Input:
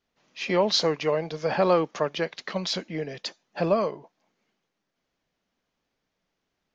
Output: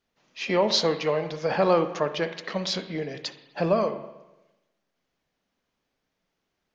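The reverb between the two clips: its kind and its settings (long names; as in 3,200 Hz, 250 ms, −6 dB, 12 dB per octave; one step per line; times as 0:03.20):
spring reverb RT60 1 s, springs 41/59 ms, chirp 25 ms, DRR 9.5 dB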